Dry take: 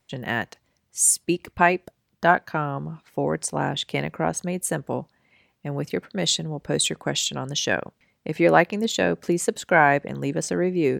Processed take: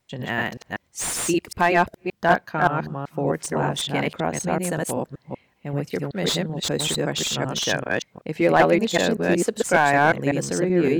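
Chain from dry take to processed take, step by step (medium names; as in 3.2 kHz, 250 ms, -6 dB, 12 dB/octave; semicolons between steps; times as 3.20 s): chunks repeated in reverse 191 ms, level 0 dB; slew-rate limiter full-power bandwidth 420 Hz; trim -1 dB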